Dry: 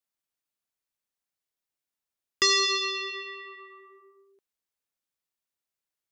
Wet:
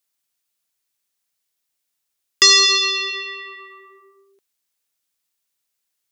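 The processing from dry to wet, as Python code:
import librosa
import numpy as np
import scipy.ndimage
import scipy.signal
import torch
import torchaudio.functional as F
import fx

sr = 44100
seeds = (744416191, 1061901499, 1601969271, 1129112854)

y = fx.high_shelf(x, sr, hz=2100.0, db=9.5)
y = y * librosa.db_to_amplitude(4.0)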